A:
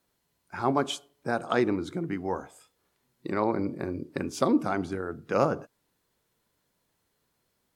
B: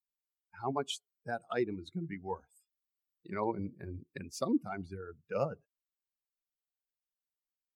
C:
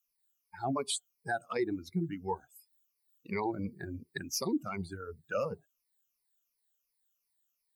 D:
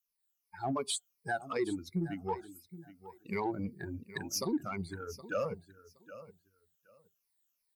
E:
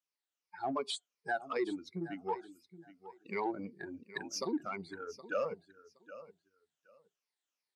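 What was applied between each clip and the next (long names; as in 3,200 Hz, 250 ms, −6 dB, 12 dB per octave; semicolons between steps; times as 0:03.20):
spectral dynamics exaggerated over time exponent 2; dynamic equaliser 1,400 Hz, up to −4 dB, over −42 dBFS, Q 1.1; speech leveller within 3 dB 0.5 s; level −2.5 dB
rippled gain that drifts along the octave scale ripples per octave 0.87, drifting −2.8 Hz, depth 18 dB; high-shelf EQ 4,500 Hz +11.5 dB; brickwall limiter −23 dBFS, peak gain reduction 9.5 dB
repeating echo 769 ms, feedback 18%, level −16.5 dB; in parallel at −10 dB: soft clipping −34.5 dBFS, distortion −9 dB; on the sum: automatic gain control gain up to 5 dB; level −7 dB
band-pass filter 280–5,000 Hz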